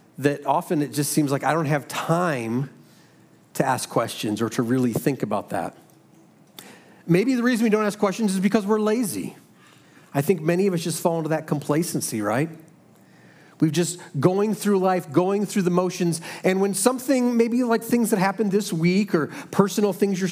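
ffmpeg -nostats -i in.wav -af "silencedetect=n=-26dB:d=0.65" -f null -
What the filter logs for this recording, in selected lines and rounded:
silence_start: 2.65
silence_end: 3.55 | silence_duration: 0.91
silence_start: 5.68
silence_end: 6.59 | silence_duration: 0.90
silence_start: 9.28
silence_end: 10.15 | silence_duration: 0.87
silence_start: 12.45
silence_end: 13.62 | silence_duration: 1.16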